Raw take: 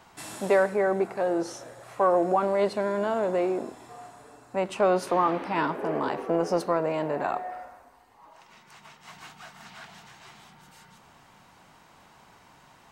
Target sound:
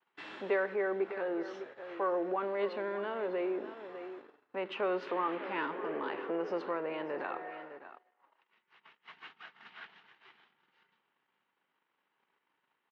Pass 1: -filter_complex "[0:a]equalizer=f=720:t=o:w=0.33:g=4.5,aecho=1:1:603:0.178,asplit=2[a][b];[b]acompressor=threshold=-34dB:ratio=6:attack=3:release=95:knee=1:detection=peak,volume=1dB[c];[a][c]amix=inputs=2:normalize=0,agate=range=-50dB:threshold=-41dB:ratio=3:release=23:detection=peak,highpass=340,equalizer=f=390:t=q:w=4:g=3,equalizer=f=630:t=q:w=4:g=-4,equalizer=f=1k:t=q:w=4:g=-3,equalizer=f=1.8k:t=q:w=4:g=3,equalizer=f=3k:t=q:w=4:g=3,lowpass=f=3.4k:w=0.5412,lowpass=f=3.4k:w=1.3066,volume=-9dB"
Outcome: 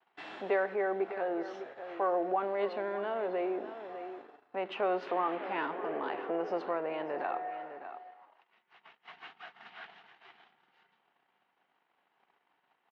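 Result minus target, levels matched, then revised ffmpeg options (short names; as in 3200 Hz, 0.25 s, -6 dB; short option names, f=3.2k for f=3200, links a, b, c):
1000 Hz band +2.5 dB
-filter_complex "[0:a]equalizer=f=720:t=o:w=0.33:g=-6.5,aecho=1:1:603:0.178,asplit=2[a][b];[b]acompressor=threshold=-34dB:ratio=6:attack=3:release=95:knee=1:detection=peak,volume=1dB[c];[a][c]amix=inputs=2:normalize=0,agate=range=-50dB:threshold=-41dB:ratio=3:release=23:detection=peak,highpass=340,equalizer=f=390:t=q:w=4:g=3,equalizer=f=630:t=q:w=4:g=-4,equalizer=f=1k:t=q:w=4:g=-3,equalizer=f=1.8k:t=q:w=4:g=3,equalizer=f=3k:t=q:w=4:g=3,lowpass=f=3.4k:w=0.5412,lowpass=f=3.4k:w=1.3066,volume=-9dB"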